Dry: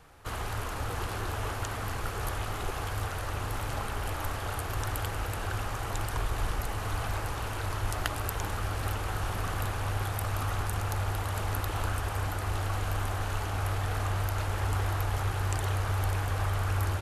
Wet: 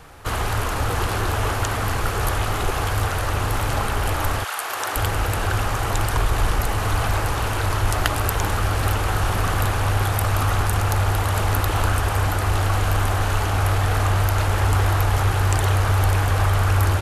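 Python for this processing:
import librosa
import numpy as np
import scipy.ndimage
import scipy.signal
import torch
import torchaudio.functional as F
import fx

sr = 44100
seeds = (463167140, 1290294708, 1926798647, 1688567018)

p1 = fx.highpass(x, sr, hz=fx.line((4.43, 1300.0), (4.95, 360.0)), slope=12, at=(4.43, 4.95), fade=0.02)
p2 = 10.0 ** (-26.0 / 20.0) * np.tanh(p1 / 10.0 ** (-26.0 / 20.0))
p3 = p1 + F.gain(torch.from_numpy(p2), -7.5).numpy()
y = F.gain(torch.from_numpy(p3), 8.5).numpy()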